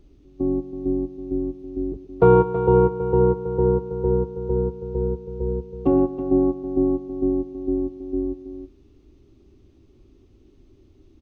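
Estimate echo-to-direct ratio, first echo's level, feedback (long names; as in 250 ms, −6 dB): −9.0 dB, −14.5 dB, repeats not evenly spaced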